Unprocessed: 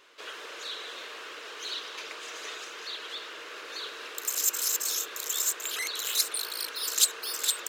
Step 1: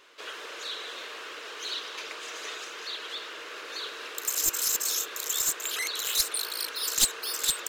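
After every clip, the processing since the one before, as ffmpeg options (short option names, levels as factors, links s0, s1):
-af "aeval=exprs='clip(val(0),-1,0.0944)':c=same,volume=1.19"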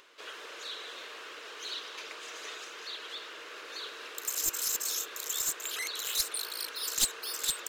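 -af "acompressor=mode=upward:threshold=0.00282:ratio=2.5,volume=0.596"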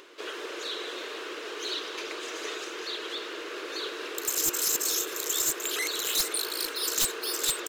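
-af "equalizer=f=350:w=1.6:g=12,aeval=exprs='0.0631*(abs(mod(val(0)/0.0631+3,4)-2)-1)':c=same,aecho=1:1:454|908|1362:0.15|0.0524|0.0183,volume=1.78"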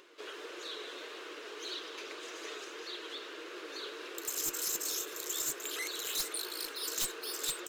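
-af "flanger=delay=5.4:depth=2.2:regen=71:speed=1.7:shape=triangular,volume=0.668"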